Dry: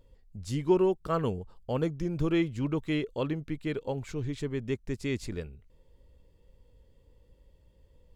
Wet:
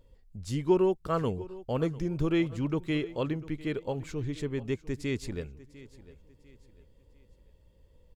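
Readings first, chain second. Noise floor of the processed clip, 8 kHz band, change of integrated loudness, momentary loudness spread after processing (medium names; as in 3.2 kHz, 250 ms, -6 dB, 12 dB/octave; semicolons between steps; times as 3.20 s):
-62 dBFS, 0.0 dB, 0.0 dB, 12 LU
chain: feedback delay 699 ms, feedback 36%, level -18.5 dB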